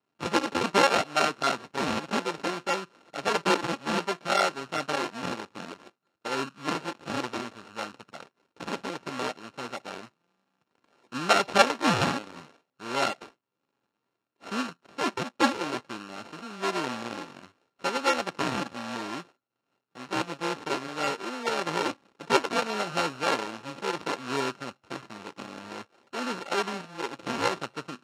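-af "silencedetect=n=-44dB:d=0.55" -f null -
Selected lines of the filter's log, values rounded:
silence_start: 10.08
silence_end: 11.12 | silence_duration: 1.04
silence_start: 13.29
silence_end: 14.43 | silence_duration: 1.14
silence_start: 19.23
silence_end: 19.95 | silence_duration: 0.73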